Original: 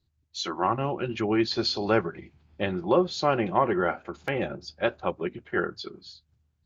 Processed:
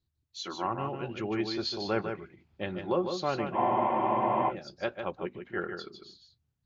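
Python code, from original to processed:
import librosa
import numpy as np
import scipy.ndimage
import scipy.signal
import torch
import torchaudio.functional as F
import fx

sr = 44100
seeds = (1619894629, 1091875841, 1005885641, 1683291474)

y = x + 10.0 ** (-6.5 / 20.0) * np.pad(x, (int(151 * sr / 1000.0), 0))[:len(x)]
y = fx.spec_freeze(y, sr, seeds[0], at_s=3.58, hold_s=0.92)
y = y * librosa.db_to_amplitude(-7.0)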